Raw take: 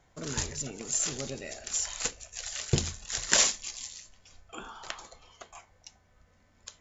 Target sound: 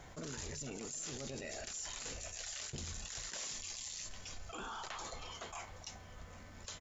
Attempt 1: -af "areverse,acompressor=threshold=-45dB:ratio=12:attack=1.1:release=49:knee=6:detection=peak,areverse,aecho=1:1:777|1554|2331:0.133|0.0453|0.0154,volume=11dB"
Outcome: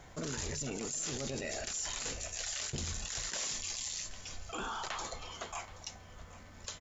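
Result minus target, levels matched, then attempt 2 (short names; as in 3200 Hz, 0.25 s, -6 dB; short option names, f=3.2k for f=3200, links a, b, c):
compressor: peak gain reduction -6 dB
-af "areverse,acompressor=threshold=-51.5dB:ratio=12:attack=1.1:release=49:knee=6:detection=peak,areverse,aecho=1:1:777|1554|2331:0.133|0.0453|0.0154,volume=11dB"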